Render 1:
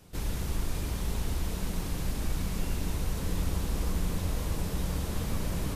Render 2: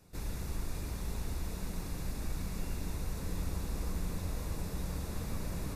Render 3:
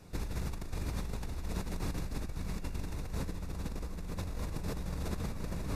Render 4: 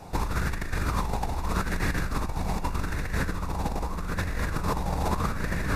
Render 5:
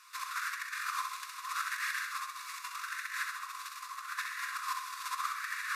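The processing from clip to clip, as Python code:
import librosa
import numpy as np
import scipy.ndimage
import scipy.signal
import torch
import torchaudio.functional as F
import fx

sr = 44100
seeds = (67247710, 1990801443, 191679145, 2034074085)

y1 = fx.notch(x, sr, hz=3100.0, q=5.5)
y1 = y1 * librosa.db_to_amplitude(-6.0)
y2 = fx.high_shelf(y1, sr, hz=8300.0, db=-10.0)
y2 = fx.over_compress(y2, sr, threshold_db=-40.0, ratio=-1.0)
y2 = y2 * librosa.db_to_amplitude(3.5)
y3 = fx.bell_lfo(y2, sr, hz=0.81, low_hz=790.0, high_hz=1800.0, db=15)
y3 = y3 * librosa.db_to_amplitude(8.0)
y4 = fx.brickwall_highpass(y3, sr, low_hz=1000.0)
y4 = fx.echo_feedback(y4, sr, ms=65, feedback_pct=51, wet_db=-6.0)
y4 = y4 * librosa.db_to_amplitude(-2.5)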